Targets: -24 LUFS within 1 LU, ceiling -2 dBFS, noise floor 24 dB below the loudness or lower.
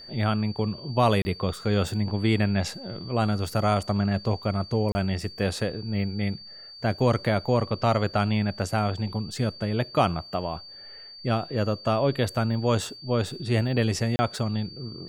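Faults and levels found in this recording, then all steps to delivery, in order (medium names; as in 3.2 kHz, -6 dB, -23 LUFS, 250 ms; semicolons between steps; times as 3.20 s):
dropouts 3; longest dropout 30 ms; steady tone 4.6 kHz; tone level -42 dBFS; loudness -26.5 LUFS; peak level -8.0 dBFS; loudness target -24.0 LUFS
-> interpolate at 1.22/4.92/14.16 s, 30 ms; band-stop 4.6 kHz, Q 30; trim +2.5 dB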